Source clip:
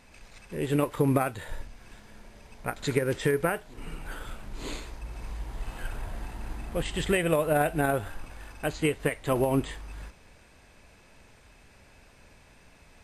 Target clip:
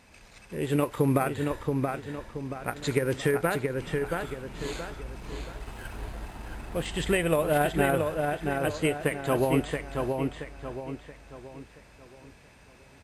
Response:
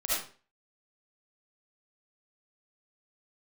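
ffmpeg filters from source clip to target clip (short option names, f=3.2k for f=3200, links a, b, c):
-filter_complex "[0:a]highpass=41,asettb=1/sr,asplit=3[a][b][c];[a]atrim=end=5.174[d];[b]atrim=start=5.17:end=6.87,asetpts=PTS-STARTPTS,afade=t=in:d=0.004:c=qsin,afade=t=out:st=1.696:d=0.004:c=qsin,aeval=exprs='sgn(val(0))*max(abs(val(0))-0.00251,0)':c=same[e];[c]atrim=start=6.866[f];[d][e]acrossfade=d=0.004:c1=hsin:c2=qsin[g];[g][f]acrossfade=d=0.004:c1=qsin:c2=hsin,asplit=2[h][i];[i]adelay=677,lowpass=f=4k:p=1,volume=-4dB,asplit=2[j][k];[k]adelay=677,lowpass=f=4k:p=1,volume=0.41,asplit=2[l][m];[m]adelay=677,lowpass=f=4k:p=1,volume=0.41,asplit=2[n][o];[o]adelay=677,lowpass=f=4k:p=1,volume=0.41,asplit=2[p][q];[q]adelay=677,lowpass=f=4k:p=1,volume=0.41[r];[h][j][l][n][p][r]amix=inputs=6:normalize=0"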